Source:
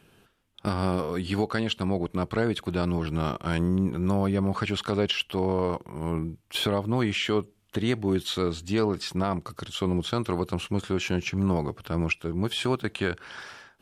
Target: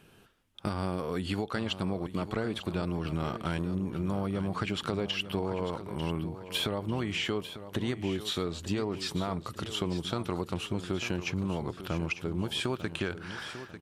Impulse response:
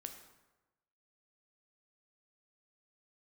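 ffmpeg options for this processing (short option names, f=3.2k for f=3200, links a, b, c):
-filter_complex "[0:a]acompressor=threshold=-28dB:ratio=6,asplit=2[a][b];[b]aecho=0:1:896|1792|2688|3584:0.251|0.098|0.0382|0.0149[c];[a][c]amix=inputs=2:normalize=0"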